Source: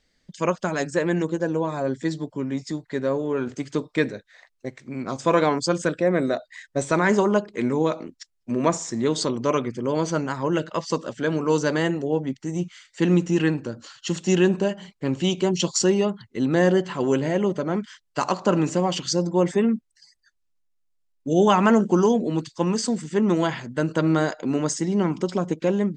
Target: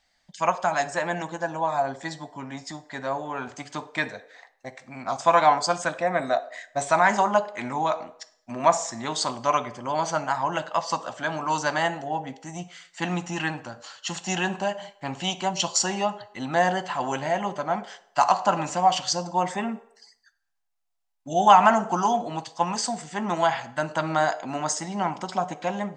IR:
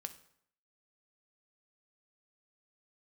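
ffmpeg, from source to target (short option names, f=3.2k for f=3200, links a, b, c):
-filter_complex "[0:a]asplit=2[a][b];[b]highpass=f=730:t=q:w=4.9[c];[1:a]atrim=start_sample=2205[d];[c][d]afir=irnorm=-1:irlink=0,volume=8dB[e];[a][e]amix=inputs=2:normalize=0,volume=-8dB"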